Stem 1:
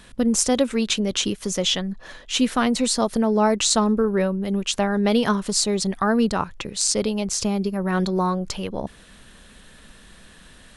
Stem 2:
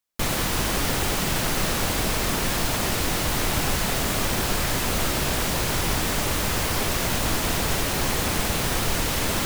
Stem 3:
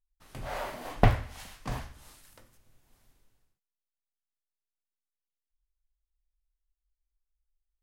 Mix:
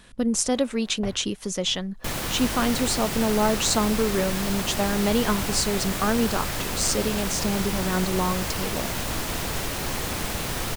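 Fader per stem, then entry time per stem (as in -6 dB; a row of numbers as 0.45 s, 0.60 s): -3.5 dB, -4.5 dB, -15.0 dB; 0.00 s, 1.85 s, 0.00 s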